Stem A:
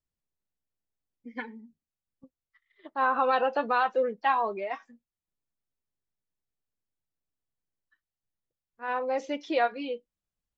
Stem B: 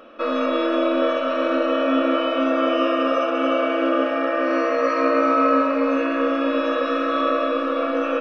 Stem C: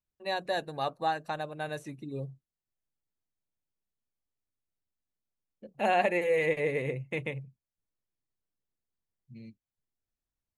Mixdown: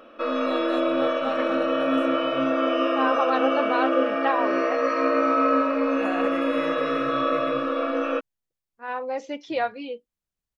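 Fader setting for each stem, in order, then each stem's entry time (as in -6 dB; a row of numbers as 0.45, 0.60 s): 0.0, -3.0, -7.0 dB; 0.00, 0.00, 0.20 s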